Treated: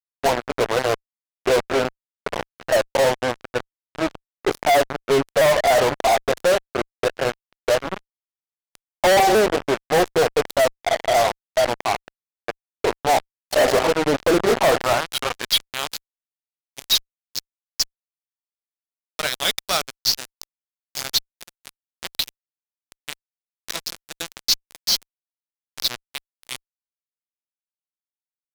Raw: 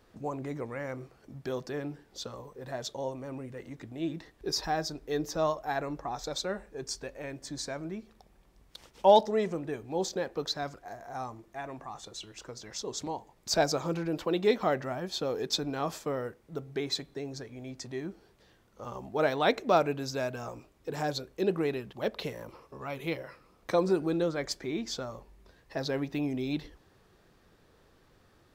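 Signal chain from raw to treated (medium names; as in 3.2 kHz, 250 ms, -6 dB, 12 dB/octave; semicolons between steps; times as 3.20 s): sawtooth pitch modulation -2.5 st, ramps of 492 ms; peaking EQ 190 Hz -4.5 dB 0.35 oct; de-hum 385.9 Hz, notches 2; band-pass sweep 660 Hz -> 5.1 kHz, 14.62–16.12 s; fuzz box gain 53 dB, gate -46 dBFS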